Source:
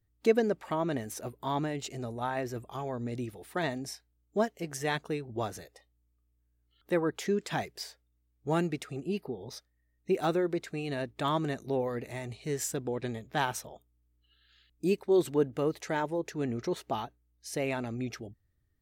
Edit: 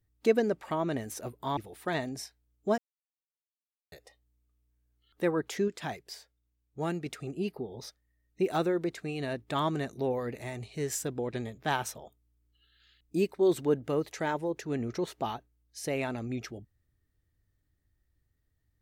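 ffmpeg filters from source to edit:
-filter_complex "[0:a]asplit=6[a][b][c][d][e][f];[a]atrim=end=1.572[g];[b]atrim=start=3.258:end=4.47,asetpts=PTS-STARTPTS,afade=t=out:st=1.208:d=0.004:c=hsin[h];[c]atrim=start=4.47:end=5.61,asetpts=PTS-STARTPTS,volume=0[i];[d]atrim=start=5.61:end=7.372,asetpts=PTS-STARTPTS,afade=t=in:d=0.004:c=hsin[j];[e]atrim=start=7.368:end=8.752,asetpts=PTS-STARTPTS,volume=-4dB[k];[f]atrim=start=8.748[l];[h][i][j]concat=n=3:v=0:a=1[m];[g][m]acrossfade=d=0.004:c1=hsin:c2=hsin[n];[n][k]acrossfade=d=0.004:c1=hsin:c2=hsin[o];[o][l]acrossfade=d=0.004:c1=hsin:c2=hsin"

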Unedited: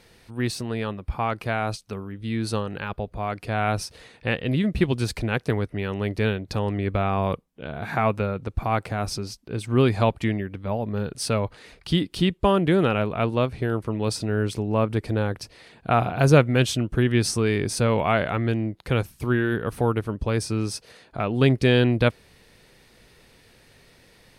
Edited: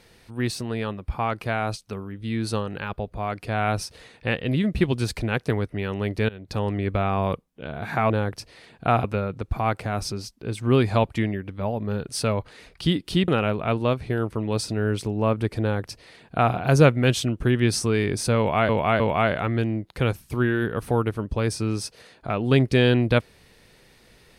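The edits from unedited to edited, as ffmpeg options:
-filter_complex "[0:a]asplit=7[a][b][c][d][e][f][g];[a]atrim=end=6.29,asetpts=PTS-STARTPTS,afade=t=out:st=6.286:d=0.004:c=hsin:silence=0.0707946[h];[b]atrim=start=6.29:end=8.102,asetpts=PTS-STARTPTS,afade=t=in:d=0.31:silence=0.0707946[i];[c]atrim=start=15.128:end=16.072[j];[d]atrim=start=8.098:end=12.342[k];[e]atrim=start=12.798:end=18.212[l];[f]atrim=start=17.898:end=18.212[m];[g]atrim=start=17.898[n];[h][i]concat=n=2:v=0:a=1[o];[o][j]acrossfade=d=0.004:c1=hsin:c2=hsin[p];[p][k]acrossfade=d=0.004:c1=hsin:c2=hsin[q];[q][l]acrossfade=d=0.004:c1=hsin:c2=hsin[r];[r][m]acrossfade=d=0.004:c1=hsin:c2=hsin[s];[s][n]acrossfade=d=0.004:c1=hsin:c2=hsin"

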